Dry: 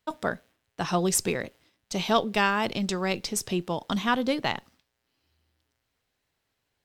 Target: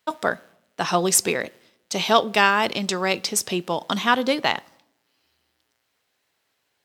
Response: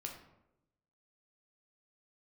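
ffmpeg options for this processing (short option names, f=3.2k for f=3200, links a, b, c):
-filter_complex "[0:a]highpass=f=400:p=1,asplit=2[a][b];[1:a]atrim=start_sample=2205[c];[b][c]afir=irnorm=-1:irlink=0,volume=-17dB[d];[a][d]amix=inputs=2:normalize=0,volume=6.5dB"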